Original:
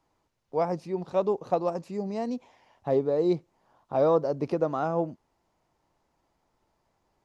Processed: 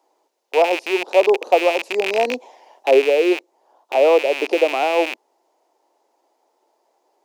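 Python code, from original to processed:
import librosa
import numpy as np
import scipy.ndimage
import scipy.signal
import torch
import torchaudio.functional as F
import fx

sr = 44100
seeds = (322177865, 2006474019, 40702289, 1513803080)

y = fx.rattle_buzz(x, sr, strikes_db=-44.0, level_db=-18.0)
y = scipy.signal.sosfilt(scipy.signal.butter(8, 250.0, 'highpass', fs=sr, output='sos'), y)
y = fx.high_shelf(y, sr, hz=2600.0, db=10.0)
y = fx.rider(y, sr, range_db=10, speed_s=0.5)
y = fx.band_shelf(y, sr, hz=570.0, db=11.0, octaves=1.7)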